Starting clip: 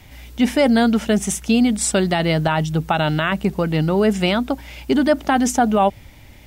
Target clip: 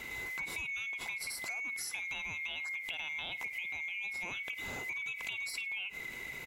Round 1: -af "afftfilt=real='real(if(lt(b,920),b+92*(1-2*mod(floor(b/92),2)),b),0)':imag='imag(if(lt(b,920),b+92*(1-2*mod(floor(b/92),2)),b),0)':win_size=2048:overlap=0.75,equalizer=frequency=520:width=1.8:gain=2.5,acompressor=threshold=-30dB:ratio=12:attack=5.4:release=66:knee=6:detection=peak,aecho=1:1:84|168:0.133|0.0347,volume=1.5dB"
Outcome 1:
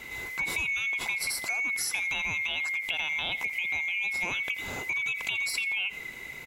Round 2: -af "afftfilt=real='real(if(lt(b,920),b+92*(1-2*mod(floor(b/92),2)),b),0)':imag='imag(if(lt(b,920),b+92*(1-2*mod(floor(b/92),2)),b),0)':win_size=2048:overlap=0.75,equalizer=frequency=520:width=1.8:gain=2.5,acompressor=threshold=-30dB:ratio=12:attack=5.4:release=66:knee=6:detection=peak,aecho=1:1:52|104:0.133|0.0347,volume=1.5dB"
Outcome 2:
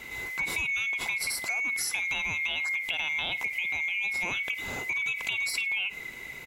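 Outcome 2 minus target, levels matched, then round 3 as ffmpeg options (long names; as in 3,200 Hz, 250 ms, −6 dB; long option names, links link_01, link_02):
downward compressor: peak gain reduction −9 dB
-af "afftfilt=real='real(if(lt(b,920),b+92*(1-2*mod(floor(b/92),2)),b),0)':imag='imag(if(lt(b,920),b+92*(1-2*mod(floor(b/92),2)),b),0)':win_size=2048:overlap=0.75,equalizer=frequency=520:width=1.8:gain=2.5,acompressor=threshold=-40dB:ratio=12:attack=5.4:release=66:knee=6:detection=peak,aecho=1:1:52|104:0.133|0.0347,volume=1.5dB"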